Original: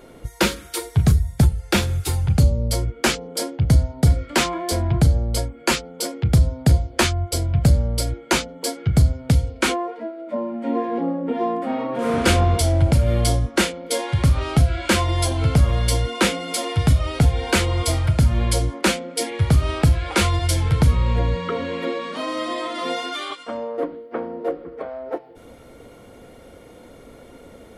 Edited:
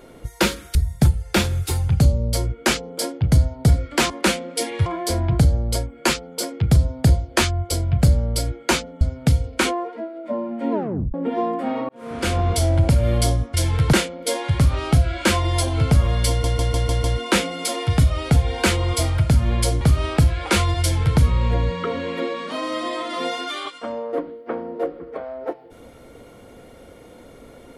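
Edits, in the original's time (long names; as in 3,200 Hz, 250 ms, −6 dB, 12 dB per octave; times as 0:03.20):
0:00.75–0:01.13: remove
0:08.63–0:09.04: remove
0:10.75: tape stop 0.42 s
0:11.92–0:12.67: fade in
0:15.93: stutter 0.15 s, 6 plays
0:18.70–0:19.46: move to 0:04.48
0:20.46–0:20.85: duplicate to 0:13.57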